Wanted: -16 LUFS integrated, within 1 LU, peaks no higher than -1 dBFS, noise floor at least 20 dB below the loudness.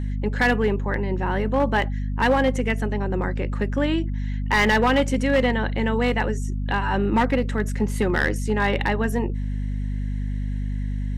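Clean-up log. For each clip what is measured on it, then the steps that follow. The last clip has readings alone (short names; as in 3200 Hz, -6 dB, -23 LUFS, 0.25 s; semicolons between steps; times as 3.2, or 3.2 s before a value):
clipped 1.0%; flat tops at -13.0 dBFS; hum 50 Hz; harmonics up to 250 Hz; hum level -23 dBFS; loudness -23.0 LUFS; peak -13.0 dBFS; loudness target -16.0 LUFS
-> clip repair -13 dBFS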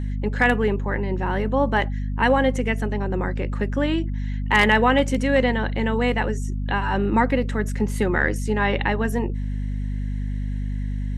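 clipped 0.0%; hum 50 Hz; harmonics up to 250 Hz; hum level -23 dBFS
-> notches 50/100/150/200/250 Hz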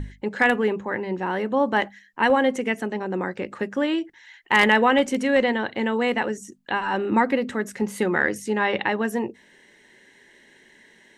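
hum none; loudness -23.0 LUFS; peak -4.0 dBFS; loudness target -16.0 LUFS
-> gain +7 dB; limiter -1 dBFS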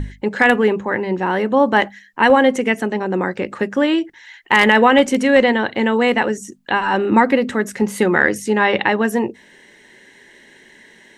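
loudness -16.5 LUFS; peak -1.0 dBFS; noise floor -49 dBFS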